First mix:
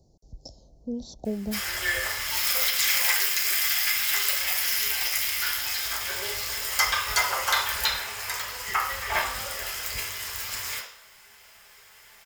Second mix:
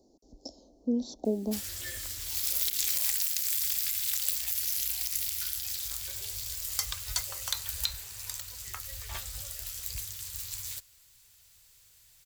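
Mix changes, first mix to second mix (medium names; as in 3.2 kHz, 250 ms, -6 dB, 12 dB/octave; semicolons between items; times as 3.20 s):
speech: add resonant low shelf 190 Hz -11.5 dB, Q 3; reverb: off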